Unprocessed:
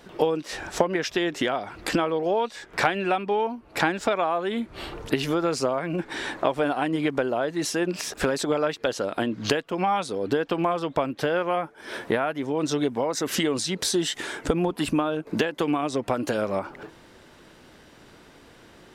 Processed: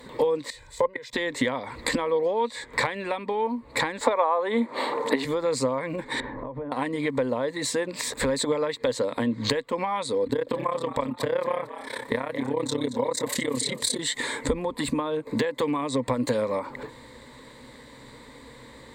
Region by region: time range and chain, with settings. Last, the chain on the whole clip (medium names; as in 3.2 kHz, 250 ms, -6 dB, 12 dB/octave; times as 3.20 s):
0.50–1.13 s: comb 2 ms, depth 54% + level held to a coarse grid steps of 22 dB + three bands expanded up and down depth 70%
4.01–5.25 s: high-pass 200 Hz 24 dB/octave + peaking EQ 780 Hz +12.5 dB 2.3 oct
6.20–6.72 s: tilt EQ -2 dB/octave + compression 20:1, threshold -33 dBFS + low-pass 1.5 kHz
10.24–14.00 s: peaking EQ 12 kHz +6 dB 0.85 oct + AM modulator 33 Hz, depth 80% + frequency-shifting echo 225 ms, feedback 30%, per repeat +94 Hz, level -13 dB
whole clip: compression 2.5:1, threshold -28 dBFS; rippled EQ curve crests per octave 1, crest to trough 13 dB; trim +2 dB